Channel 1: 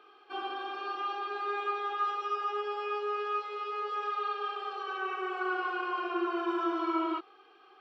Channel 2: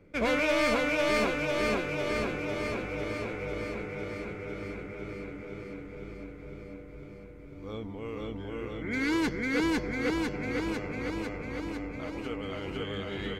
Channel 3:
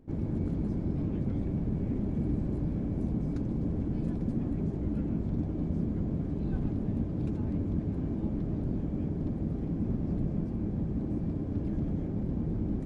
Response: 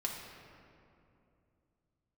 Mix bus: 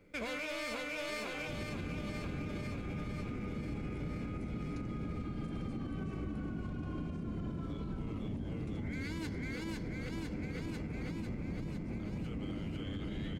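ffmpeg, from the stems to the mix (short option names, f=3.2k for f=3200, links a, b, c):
-filter_complex "[0:a]acompressor=threshold=-36dB:ratio=6,adelay=1000,volume=-7.5dB[a];[1:a]bandreject=f=5.8k:w=15,volume=-7.5dB,asplit=2[b][c];[c]volume=-10.5dB[d];[2:a]adelay=1400,volume=2.5dB[e];[3:a]atrim=start_sample=2205[f];[d][f]afir=irnorm=-1:irlink=0[g];[a][b][e][g]amix=inputs=4:normalize=0,highshelf=f=2.4k:g=9.5,alimiter=level_in=7.5dB:limit=-24dB:level=0:latency=1:release=245,volume=-7.5dB"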